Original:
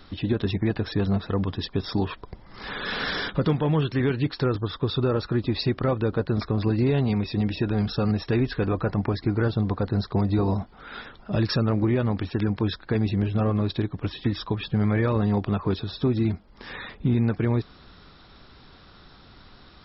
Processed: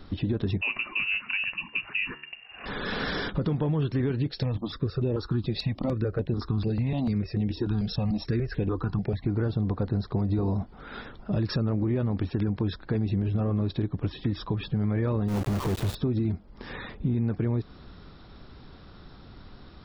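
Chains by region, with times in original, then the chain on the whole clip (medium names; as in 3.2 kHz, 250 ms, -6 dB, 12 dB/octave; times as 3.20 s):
0.61–2.66 s: frequency inversion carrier 2.8 kHz + de-hum 73.35 Hz, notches 32
4.28–9.26 s: treble shelf 3.2 kHz +8 dB + stepped phaser 6.8 Hz 280–4600 Hz
15.28–15.95 s: low-pass 2.2 kHz 6 dB/octave + compression 12:1, threshold -28 dBFS + companded quantiser 2-bit
whole clip: tilt shelf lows +4.5 dB, about 720 Hz; peak limiter -15 dBFS; compression 2.5:1, threshold -25 dBFS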